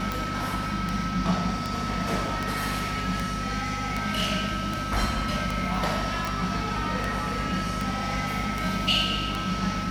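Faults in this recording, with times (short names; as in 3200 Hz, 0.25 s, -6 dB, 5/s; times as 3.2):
hum 50 Hz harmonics 5 -34 dBFS
tick 78 rpm
tone 1300 Hz -32 dBFS
6.25 pop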